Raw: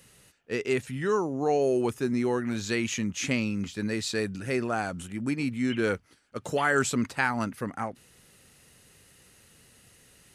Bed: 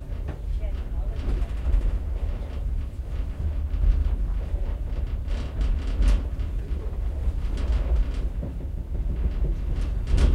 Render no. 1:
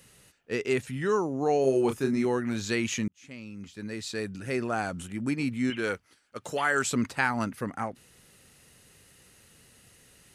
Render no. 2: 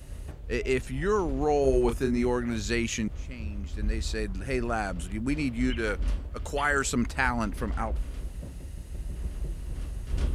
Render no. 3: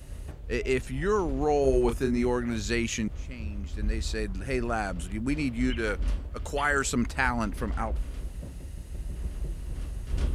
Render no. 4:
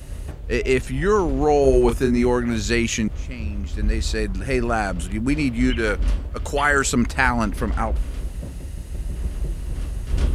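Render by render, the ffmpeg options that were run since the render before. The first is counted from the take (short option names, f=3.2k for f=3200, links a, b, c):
-filter_complex "[0:a]asettb=1/sr,asplit=3[a][b][c];[a]atrim=end=1.614[d];[b]atrim=start=1.61:end=2.25,asetpts=PTS-STARTPTS,afade=t=in:d=0.004:c=qsin,afade=t=out:st=0.636:d=0.004:c=qsin,asplit=2[e][f];[f]adelay=30,volume=-6dB[g];[e][g]amix=inputs=2:normalize=0,atrim=end_sample=28224[h];[c]atrim=start=2.246[i];[d][h]acrossfade=d=0.004:c1=hsin:c2=qsin[j];[j][i]acrossfade=d=0.004:c1=qsin:c2=hsin,asettb=1/sr,asplit=3[k][l][m];[k]atrim=end=5.704[n];[l]atrim=start=5.7:end=6.91,asetpts=PTS-STARTPTS,afade=t=in:d=0.004:c=qsin,afade=t=out:st=1.206:d=0.004:c=qsin,lowshelf=f=430:g=-8[o];[m]atrim=start=6.906[p];[n][o]acrossfade=d=0.004:c1=hsin:c2=qsin[q];[q][p]acrossfade=d=0.004:c1=qsin:c2=hsin,asplit=2[r][s];[r]atrim=end=3.08,asetpts=PTS-STARTPTS,afade=t=out:st=3.076:d=0.004:c=hsin[t];[s]atrim=start=3.08,asetpts=PTS-STARTPTS,afade=t=in:d=1.78[u];[t][u]concat=n=2:v=0:a=1"
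-filter_complex "[1:a]volume=-8.5dB[a];[0:a][a]amix=inputs=2:normalize=0"
-af anull
-af "volume=7.5dB"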